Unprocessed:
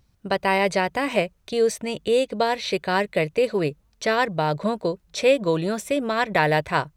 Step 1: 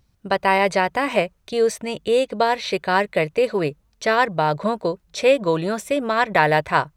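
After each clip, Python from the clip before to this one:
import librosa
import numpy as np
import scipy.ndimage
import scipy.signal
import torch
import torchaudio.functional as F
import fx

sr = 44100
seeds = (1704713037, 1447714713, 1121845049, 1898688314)

y = fx.dynamic_eq(x, sr, hz=1100.0, q=0.72, threshold_db=-34.0, ratio=4.0, max_db=5)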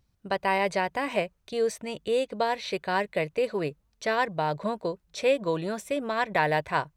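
y = fx.dynamic_eq(x, sr, hz=1300.0, q=7.9, threshold_db=-42.0, ratio=4.0, max_db=-6)
y = y * librosa.db_to_amplitude(-7.5)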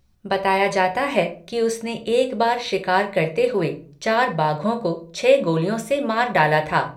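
y = fx.room_shoebox(x, sr, seeds[0], volume_m3=250.0, walls='furnished', distance_m=1.0)
y = y * librosa.db_to_amplitude(6.0)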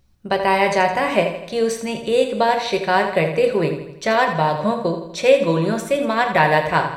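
y = fx.echo_feedback(x, sr, ms=82, feedback_pct=52, wet_db=-10.0)
y = y * librosa.db_to_amplitude(1.5)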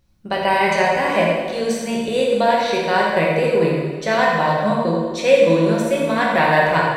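y = fx.rev_plate(x, sr, seeds[1], rt60_s=1.6, hf_ratio=0.8, predelay_ms=0, drr_db=-2.0)
y = y * librosa.db_to_amplitude(-3.0)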